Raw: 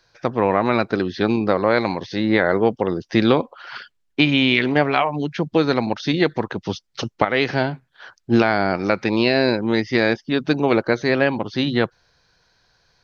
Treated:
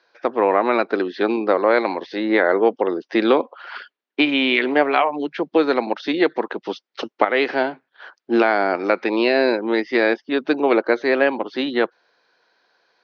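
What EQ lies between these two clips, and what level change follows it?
high-pass filter 290 Hz 24 dB per octave
high-frequency loss of the air 210 metres
+2.5 dB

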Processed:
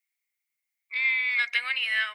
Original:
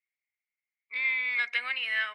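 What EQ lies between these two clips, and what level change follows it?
spectral tilt +3 dB per octave
0.0 dB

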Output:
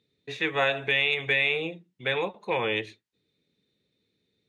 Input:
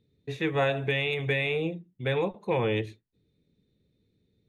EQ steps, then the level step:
high-pass filter 270 Hz 6 dB per octave
high-frequency loss of the air 64 metres
tilt shelving filter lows −5.5 dB
+3.0 dB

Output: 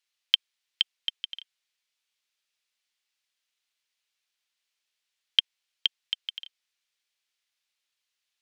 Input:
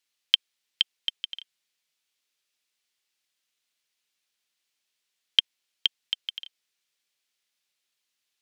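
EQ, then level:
parametric band 190 Hz −13 dB 2.6 octaves
high-shelf EQ 7,000 Hz −7 dB
0.0 dB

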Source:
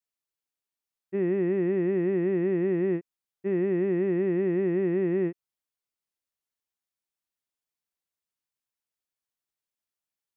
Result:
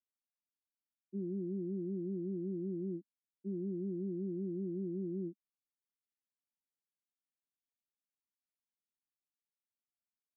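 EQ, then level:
flat-topped band-pass 240 Hz, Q 2.4
−3.0 dB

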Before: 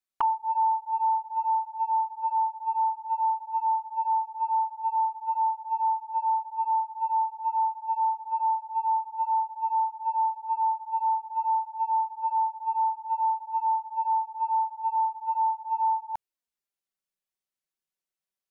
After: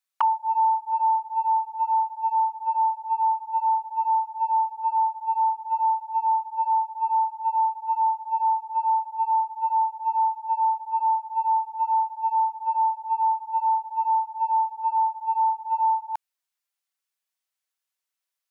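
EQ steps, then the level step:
high-pass filter 810 Hz
+5.5 dB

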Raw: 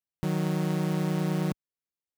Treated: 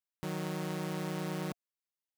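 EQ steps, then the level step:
low-shelf EQ 260 Hz −11 dB
notch filter 700 Hz, Q 12
−3.0 dB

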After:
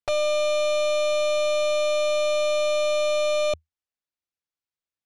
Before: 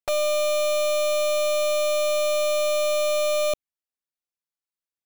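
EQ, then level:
low-pass filter 6,200 Hz 12 dB per octave
parametric band 80 Hz +11 dB 0.46 octaves
0.0 dB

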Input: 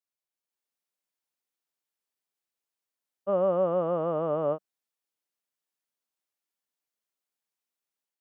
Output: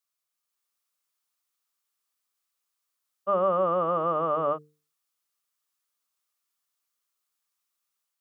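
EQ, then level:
parametric band 1,200 Hz +11.5 dB 0.38 octaves
high-shelf EQ 2,100 Hz +10 dB
mains-hum notches 50/100/150/200/250/300/350/400/450 Hz
−1.5 dB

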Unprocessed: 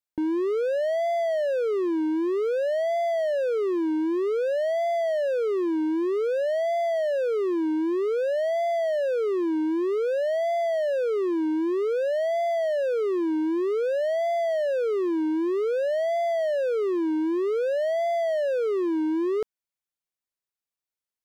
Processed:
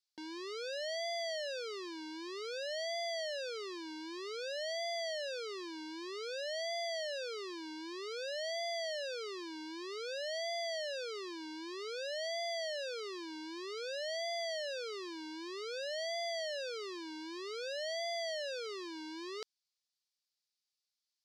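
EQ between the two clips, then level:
resonant band-pass 4,700 Hz, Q 3.1
+12.0 dB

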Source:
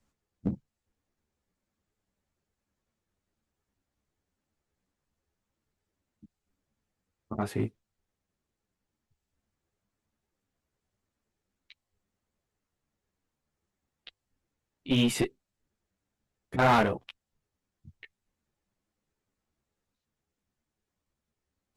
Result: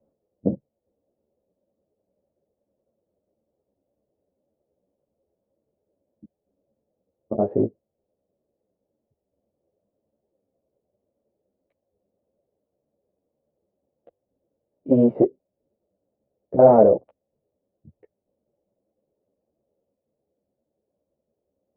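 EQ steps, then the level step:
resonant band-pass 370 Hz, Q 0.58
low-pass with resonance 570 Hz, resonance Q 4.9
+7.0 dB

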